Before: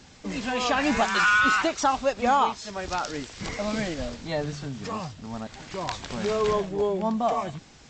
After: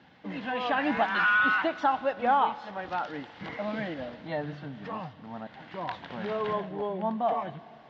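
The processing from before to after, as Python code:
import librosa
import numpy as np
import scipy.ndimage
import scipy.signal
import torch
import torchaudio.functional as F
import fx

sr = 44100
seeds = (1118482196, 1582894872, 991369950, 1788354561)

y = fx.cabinet(x, sr, low_hz=190.0, low_slope=12, high_hz=2900.0, hz=(240.0, 400.0, 580.0, 1200.0, 2400.0), db=(-5, -9, -3, -6, -8))
y = fx.rev_schroeder(y, sr, rt60_s=3.4, comb_ms=27, drr_db=18.0)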